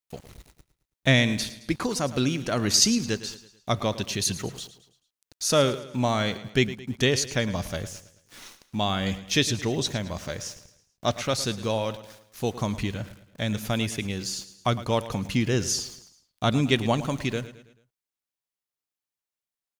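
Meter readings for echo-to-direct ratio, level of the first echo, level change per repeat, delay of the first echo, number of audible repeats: -14.0 dB, -15.0 dB, -7.0 dB, 109 ms, 3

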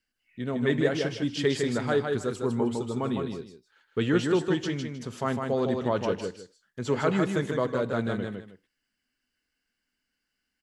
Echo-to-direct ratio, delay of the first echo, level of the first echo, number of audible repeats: -4.5 dB, 156 ms, -4.5 dB, 2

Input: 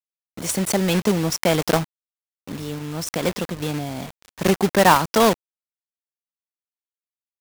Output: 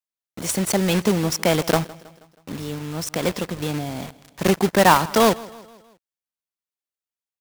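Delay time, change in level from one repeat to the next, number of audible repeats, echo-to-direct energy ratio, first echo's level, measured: 160 ms, -6.0 dB, 3, -19.5 dB, -21.0 dB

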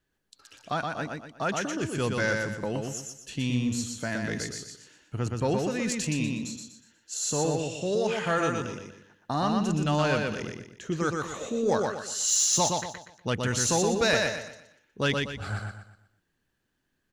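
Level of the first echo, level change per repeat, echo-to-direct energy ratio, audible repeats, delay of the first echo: -3.5 dB, -9.0 dB, -3.0 dB, 4, 121 ms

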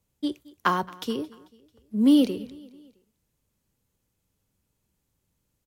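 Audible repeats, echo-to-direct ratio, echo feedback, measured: 3, -21.0 dB, 50%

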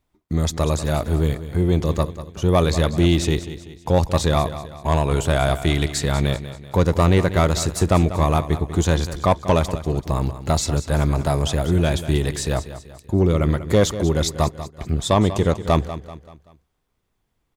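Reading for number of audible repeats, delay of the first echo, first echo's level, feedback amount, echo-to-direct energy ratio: 4, 192 ms, -13.0 dB, 44%, -12.0 dB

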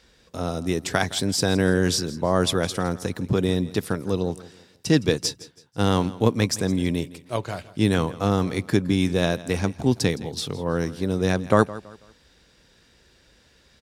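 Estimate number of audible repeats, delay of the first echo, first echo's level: 2, 164 ms, -18.0 dB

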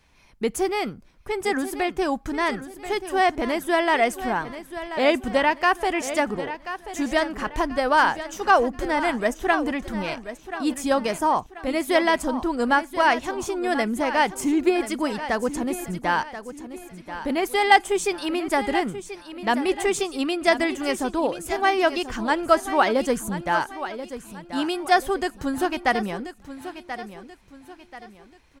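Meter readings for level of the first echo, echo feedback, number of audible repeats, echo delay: -12.0 dB, 38%, 3, 1034 ms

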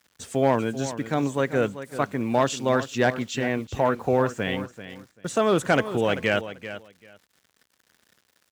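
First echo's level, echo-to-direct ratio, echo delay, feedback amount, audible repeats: -12.5 dB, -12.5 dB, 389 ms, 18%, 2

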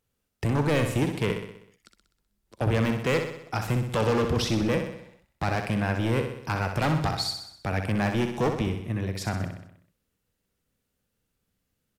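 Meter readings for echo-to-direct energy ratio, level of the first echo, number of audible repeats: -5.5 dB, -7.0 dB, 6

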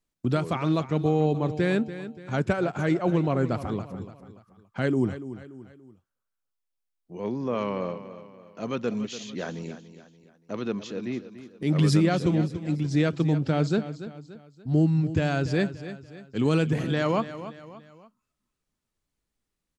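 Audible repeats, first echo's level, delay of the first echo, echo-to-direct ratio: 3, -13.0 dB, 288 ms, -12.0 dB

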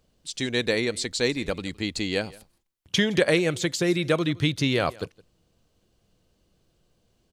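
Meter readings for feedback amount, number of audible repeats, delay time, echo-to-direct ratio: no regular repeats, 1, 165 ms, -23.0 dB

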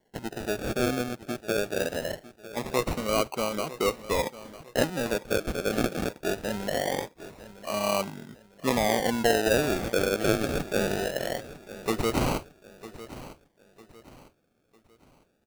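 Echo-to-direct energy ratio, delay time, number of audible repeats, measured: -15.5 dB, 952 ms, 3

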